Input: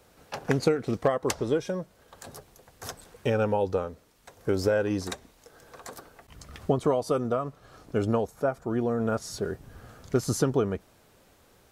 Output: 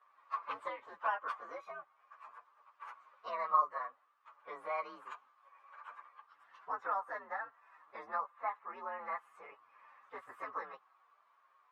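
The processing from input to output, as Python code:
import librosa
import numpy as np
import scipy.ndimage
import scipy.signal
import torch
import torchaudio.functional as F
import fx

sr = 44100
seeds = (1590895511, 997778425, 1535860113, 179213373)

y = fx.partial_stretch(x, sr, pct=122)
y = fx.ladder_bandpass(y, sr, hz=1200.0, resonance_pct=80)
y = F.gain(torch.from_numpy(y), 6.0).numpy()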